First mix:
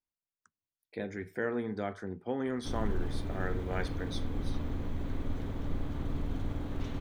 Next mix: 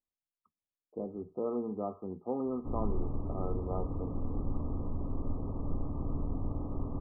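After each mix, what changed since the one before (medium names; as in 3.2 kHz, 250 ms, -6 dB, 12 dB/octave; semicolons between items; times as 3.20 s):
speech: add peaking EQ 110 Hz -12.5 dB 0.4 oct; master: add brick-wall FIR low-pass 1.3 kHz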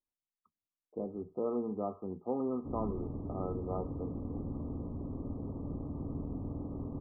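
background: add band-pass filter 240 Hz, Q 0.51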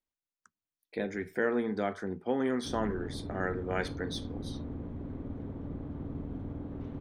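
speech +4.0 dB; master: remove brick-wall FIR low-pass 1.3 kHz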